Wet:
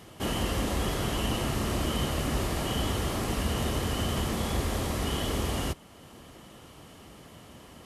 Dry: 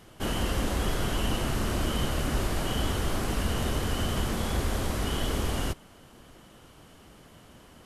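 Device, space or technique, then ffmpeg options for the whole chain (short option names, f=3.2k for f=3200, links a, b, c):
parallel compression: -filter_complex "[0:a]highpass=49,bandreject=f=1.5k:w=10,asplit=2[a][b];[b]acompressor=threshold=-49dB:ratio=6,volume=-5dB[c];[a][c]amix=inputs=2:normalize=0"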